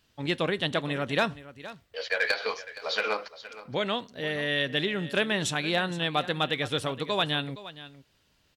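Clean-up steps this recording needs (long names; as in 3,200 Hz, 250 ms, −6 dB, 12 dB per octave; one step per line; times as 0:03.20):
echo removal 468 ms −16 dB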